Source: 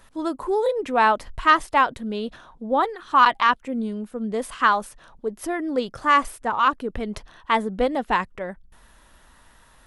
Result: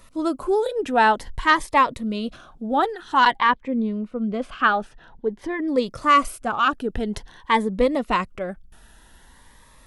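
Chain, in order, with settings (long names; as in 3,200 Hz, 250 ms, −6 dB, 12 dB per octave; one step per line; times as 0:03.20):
0:03.35–0:05.68: low-pass filter 3,100 Hz 12 dB per octave
phaser whose notches keep moving one way rising 0.5 Hz
level +3.5 dB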